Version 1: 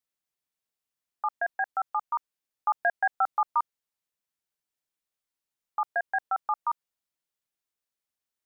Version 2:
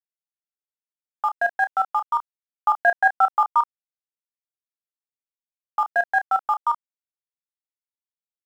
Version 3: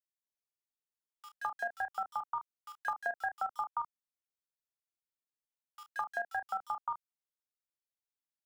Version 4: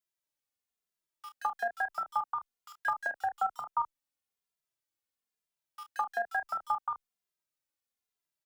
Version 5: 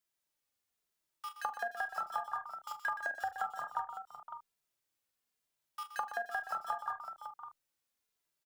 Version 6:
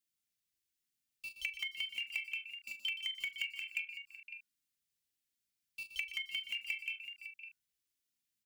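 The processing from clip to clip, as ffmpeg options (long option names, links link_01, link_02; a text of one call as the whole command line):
ffmpeg -i in.wav -filter_complex "[0:a]aeval=exprs='sgn(val(0))*max(abs(val(0))-0.00251,0)':channel_layout=same,asplit=2[link_01][link_02];[link_02]adelay=30,volume=-9dB[link_03];[link_01][link_03]amix=inputs=2:normalize=0,volume=7dB" out.wav
ffmpeg -i in.wav -filter_complex "[0:a]acrossover=split=2300[link_01][link_02];[link_01]adelay=210[link_03];[link_03][link_02]amix=inputs=2:normalize=0,acrossover=split=280|3300[link_04][link_05][link_06];[link_04]acompressor=threshold=-54dB:ratio=4[link_07];[link_05]acompressor=threshold=-30dB:ratio=4[link_08];[link_06]acompressor=threshold=-50dB:ratio=4[link_09];[link_07][link_08][link_09]amix=inputs=3:normalize=0,volume=-5dB" out.wav
ffmpeg -i in.wav -filter_complex "[0:a]asplit=2[link_01][link_02];[link_02]adelay=2.5,afreqshift=-1.1[link_03];[link_01][link_03]amix=inputs=2:normalize=1,volume=6.5dB" out.wav
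ffmpeg -i in.wav -filter_complex "[0:a]acompressor=threshold=-38dB:ratio=5,asplit=2[link_01][link_02];[link_02]aecho=0:1:41|122|514|556:0.188|0.282|0.168|0.335[link_03];[link_01][link_03]amix=inputs=2:normalize=0,volume=3.5dB" out.wav
ffmpeg -i in.wav -filter_complex "[0:a]afftfilt=real='real(if(lt(b,272),68*(eq(floor(b/68),0)*3+eq(floor(b/68),1)*0+eq(floor(b/68),2)*1+eq(floor(b/68),3)*2)+mod(b,68),b),0)':imag='imag(if(lt(b,272),68*(eq(floor(b/68),0)*3+eq(floor(b/68),1)*0+eq(floor(b/68),2)*1+eq(floor(b/68),3)*2)+mod(b,68),b),0)':win_size=2048:overlap=0.75,acrossover=split=380|1600|6000[link_01][link_02][link_03][link_04];[link_02]acrusher=bits=6:mix=0:aa=0.000001[link_05];[link_01][link_05][link_03][link_04]amix=inputs=4:normalize=0,volume=-1.5dB" out.wav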